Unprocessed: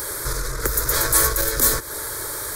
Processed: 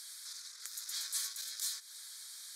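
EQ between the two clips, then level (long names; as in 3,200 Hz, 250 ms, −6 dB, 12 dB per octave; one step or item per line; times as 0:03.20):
four-pole ladder band-pass 4,700 Hz, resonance 30%
−2.5 dB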